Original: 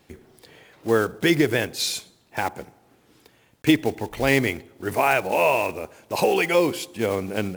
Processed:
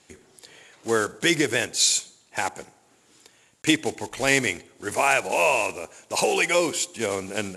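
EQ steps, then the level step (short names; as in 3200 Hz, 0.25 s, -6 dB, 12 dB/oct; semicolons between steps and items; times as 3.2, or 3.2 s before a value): steep low-pass 11000 Hz 48 dB/oct; tilt +2 dB/oct; bell 7100 Hz +8.5 dB 0.28 oct; -1.0 dB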